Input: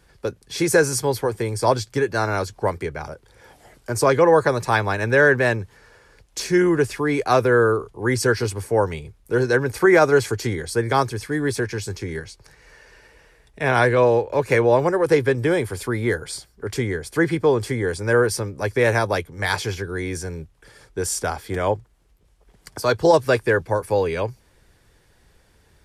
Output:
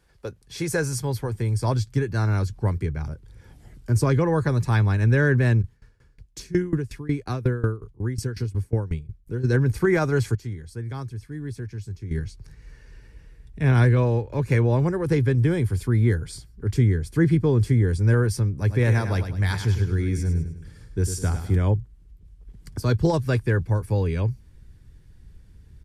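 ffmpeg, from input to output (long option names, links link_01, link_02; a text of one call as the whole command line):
ffmpeg -i in.wav -filter_complex "[0:a]asplit=3[link_01][link_02][link_03];[link_01]afade=type=out:start_time=5.61:duration=0.02[link_04];[link_02]aeval=exprs='val(0)*pow(10,-20*if(lt(mod(5.5*n/s,1),2*abs(5.5)/1000),1-mod(5.5*n/s,1)/(2*abs(5.5)/1000),(mod(5.5*n/s,1)-2*abs(5.5)/1000)/(1-2*abs(5.5)/1000))/20)':channel_layout=same,afade=type=in:start_time=5.61:duration=0.02,afade=type=out:start_time=9.43:duration=0.02[link_05];[link_03]afade=type=in:start_time=9.43:duration=0.02[link_06];[link_04][link_05][link_06]amix=inputs=3:normalize=0,asplit=3[link_07][link_08][link_09];[link_07]afade=type=out:start_time=18.66:duration=0.02[link_10];[link_08]aecho=1:1:102|204|306|408|510:0.355|0.149|0.0626|0.0263|0.011,afade=type=in:start_time=18.66:duration=0.02,afade=type=out:start_time=21.55:duration=0.02[link_11];[link_09]afade=type=in:start_time=21.55:duration=0.02[link_12];[link_10][link_11][link_12]amix=inputs=3:normalize=0,asplit=3[link_13][link_14][link_15];[link_13]atrim=end=10.352[link_16];[link_14]atrim=start=10.348:end=12.112,asetpts=PTS-STARTPTS,volume=-11dB[link_17];[link_15]atrim=start=12.108[link_18];[link_16][link_17]acrossfade=duration=0.004:curve1=hsin:curve2=hsin[link_19];[link_19][link_18]acrossfade=duration=0.004:curve1=hsin:curve2=hsin,asubboost=boost=11.5:cutoff=200,volume=-7.5dB" out.wav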